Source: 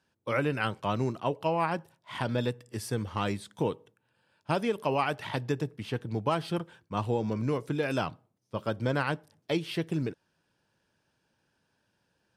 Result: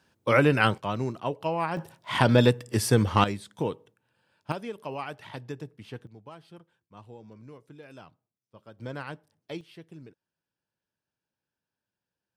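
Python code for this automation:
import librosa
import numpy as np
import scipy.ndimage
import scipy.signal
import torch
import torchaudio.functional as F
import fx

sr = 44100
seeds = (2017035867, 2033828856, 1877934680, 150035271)

y = fx.gain(x, sr, db=fx.steps((0.0, 8.0), (0.78, -0.5), (1.77, 10.5), (3.24, 0.0), (4.52, -7.5), (6.07, -18.0), (8.79, -8.5), (9.61, -16.0)))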